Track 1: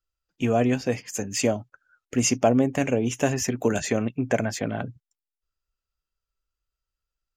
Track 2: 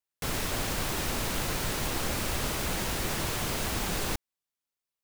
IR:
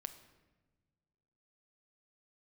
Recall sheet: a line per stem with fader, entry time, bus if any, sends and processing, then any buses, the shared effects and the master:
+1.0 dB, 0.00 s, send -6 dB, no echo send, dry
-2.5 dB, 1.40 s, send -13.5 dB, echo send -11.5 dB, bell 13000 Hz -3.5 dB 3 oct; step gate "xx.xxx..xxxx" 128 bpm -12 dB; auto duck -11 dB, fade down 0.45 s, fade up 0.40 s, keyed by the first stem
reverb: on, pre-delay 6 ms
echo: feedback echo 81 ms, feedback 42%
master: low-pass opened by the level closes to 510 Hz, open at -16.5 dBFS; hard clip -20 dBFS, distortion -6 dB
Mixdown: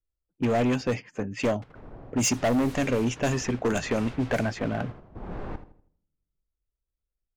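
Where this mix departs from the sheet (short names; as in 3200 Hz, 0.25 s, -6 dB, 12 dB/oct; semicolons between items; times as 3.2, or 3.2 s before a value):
stem 1: send off; stem 2: send -13.5 dB -> -21 dB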